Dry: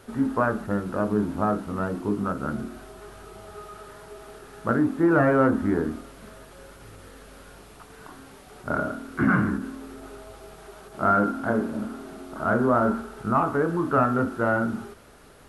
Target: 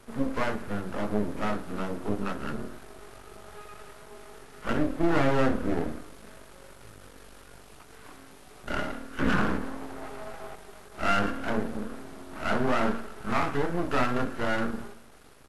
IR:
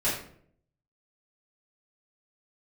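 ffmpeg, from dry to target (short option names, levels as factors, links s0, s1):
-filter_complex "[0:a]asettb=1/sr,asplit=3[s0][s1][s2];[s0]atrim=end=9.384[s3];[s1]atrim=start=9.38:end=10.56,asetpts=PTS-STARTPTS,afade=t=in:d=0.004:c=qsin,afade=t=out:st=1.176:d=0.004:c=qsin,equalizer=f=780:t=o:w=1.4:g=12.5[s4];[s2]atrim=start=10.556[s5];[s3][s4]acrossfade=d=0.004:c1=hsin:c2=qsin[s6];[s6][s5]acrossfade=d=0.004:c1=qsin:c2=hsin,aeval=exprs='max(val(0),0)':c=same,asplit=2[s7][s8];[s8]aecho=0:1:108|216|324|432:0.0944|0.0519|0.0286|0.0157[s9];[s7][s9]amix=inputs=2:normalize=0" -ar 32000 -c:a libvorbis -b:a 32k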